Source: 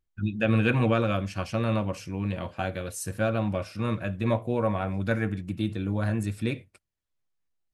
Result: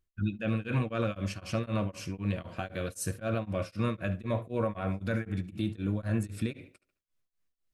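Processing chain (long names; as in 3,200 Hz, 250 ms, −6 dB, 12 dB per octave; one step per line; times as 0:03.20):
notch filter 850 Hz, Q 5.2
brickwall limiter −22 dBFS, peak gain reduction 11 dB
on a send: tape delay 71 ms, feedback 32%, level −13 dB, low-pass 4,300 Hz
on the sum: tremolo along a rectified sine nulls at 3.9 Hz
level +2 dB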